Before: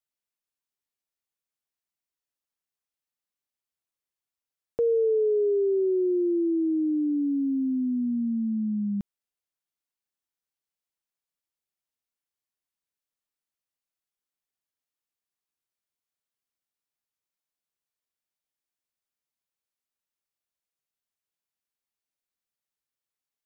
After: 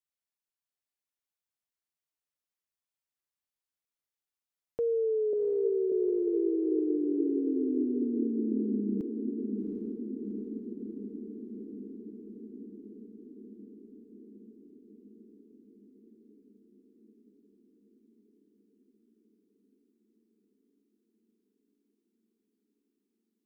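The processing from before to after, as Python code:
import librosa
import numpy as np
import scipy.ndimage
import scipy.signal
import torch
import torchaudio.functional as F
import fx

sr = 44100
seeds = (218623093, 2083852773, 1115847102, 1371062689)

y = fx.ellip_lowpass(x, sr, hz=730.0, order=4, stop_db=40, at=(5.33, 5.92))
y = fx.echo_diffused(y, sr, ms=747, feedback_pct=72, wet_db=-5.5)
y = y * 10.0 ** (-5.5 / 20.0)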